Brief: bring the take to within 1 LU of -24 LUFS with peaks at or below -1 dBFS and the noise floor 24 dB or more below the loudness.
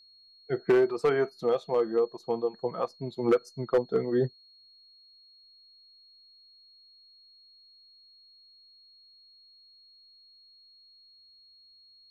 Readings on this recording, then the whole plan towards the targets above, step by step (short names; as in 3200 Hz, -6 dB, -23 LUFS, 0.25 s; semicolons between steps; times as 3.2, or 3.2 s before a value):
clipped 0.3%; flat tops at -16.5 dBFS; steady tone 4300 Hz; tone level -55 dBFS; loudness -28.0 LUFS; peak -16.5 dBFS; loudness target -24.0 LUFS
-> clip repair -16.5 dBFS; notch 4300 Hz, Q 30; gain +4 dB